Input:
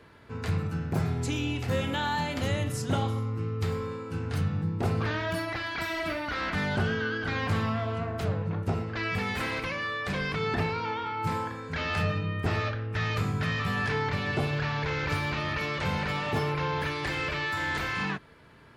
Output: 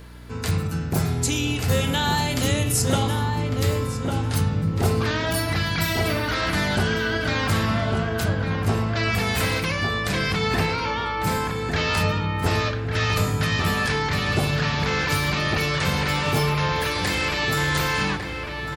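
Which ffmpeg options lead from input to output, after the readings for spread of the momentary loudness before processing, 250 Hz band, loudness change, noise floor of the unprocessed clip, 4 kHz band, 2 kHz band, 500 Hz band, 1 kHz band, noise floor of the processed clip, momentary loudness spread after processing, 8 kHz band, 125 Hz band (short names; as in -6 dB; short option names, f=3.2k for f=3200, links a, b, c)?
3 LU, +6.5 dB, +7.0 dB, -40 dBFS, +10.5 dB, +6.5 dB, +6.5 dB, +6.0 dB, -29 dBFS, 3 LU, +16.0 dB, +7.0 dB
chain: -filter_complex "[0:a]aeval=exprs='val(0)+0.00501*(sin(2*PI*60*n/s)+sin(2*PI*2*60*n/s)/2+sin(2*PI*3*60*n/s)/3+sin(2*PI*4*60*n/s)/4+sin(2*PI*5*60*n/s)/5)':c=same,acrossover=split=2300[a][b];[b]crystalizer=i=3:c=0[c];[a][c]amix=inputs=2:normalize=0,asplit=2[d][e];[e]adelay=1151,lowpass=f=1.8k:p=1,volume=-4dB,asplit=2[f][g];[g]adelay=1151,lowpass=f=1.8k:p=1,volume=0.34,asplit=2[h][i];[i]adelay=1151,lowpass=f=1.8k:p=1,volume=0.34,asplit=2[j][k];[k]adelay=1151,lowpass=f=1.8k:p=1,volume=0.34[l];[d][f][h][j][l]amix=inputs=5:normalize=0,volume=5dB"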